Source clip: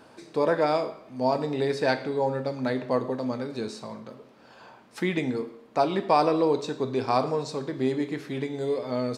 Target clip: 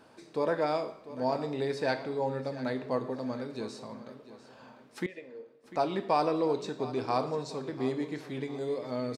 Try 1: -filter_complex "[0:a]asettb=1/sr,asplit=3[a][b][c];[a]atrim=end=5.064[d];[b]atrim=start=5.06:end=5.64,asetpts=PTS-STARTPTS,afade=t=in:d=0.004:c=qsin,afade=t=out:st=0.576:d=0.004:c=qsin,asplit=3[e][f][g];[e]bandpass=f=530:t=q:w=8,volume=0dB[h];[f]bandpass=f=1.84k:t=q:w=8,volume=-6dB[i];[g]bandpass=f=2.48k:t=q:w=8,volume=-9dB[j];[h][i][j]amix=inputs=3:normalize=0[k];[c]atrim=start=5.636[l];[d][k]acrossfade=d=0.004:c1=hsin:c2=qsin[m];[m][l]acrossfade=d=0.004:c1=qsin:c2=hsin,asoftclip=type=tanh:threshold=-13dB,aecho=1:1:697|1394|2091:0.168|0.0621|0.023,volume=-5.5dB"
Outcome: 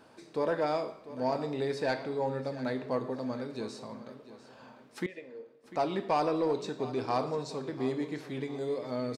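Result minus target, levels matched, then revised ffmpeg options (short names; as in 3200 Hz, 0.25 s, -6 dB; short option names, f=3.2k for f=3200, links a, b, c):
soft clip: distortion +17 dB
-filter_complex "[0:a]asettb=1/sr,asplit=3[a][b][c];[a]atrim=end=5.064[d];[b]atrim=start=5.06:end=5.64,asetpts=PTS-STARTPTS,afade=t=in:d=0.004:c=qsin,afade=t=out:st=0.576:d=0.004:c=qsin,asplit=3[e][f][g];[e]bandpass=f=530:t=q:w=8,volume=0dB[h];[f]bandpass=f=1.84k:t=q:w=8,volume=-6dB[i];[g]bandpass=f=2.48k:t=q:w=8,volume=-9dB[j];[h][i][j]amix=inputs=3:normalize=0[k];[c]atrim=start=5.636[l];[d][k]acrossfade=d=0.004:c1=hsin:c2=qsin[m];[m][l]acrossfade=d=0.004:c1=qsin:c2=hsin,asoftclip=type=tanh:threshold=-3dB,aecho=1:1:697|1394|2091:0.168|0.0621|0.023,volume=-5.5dB"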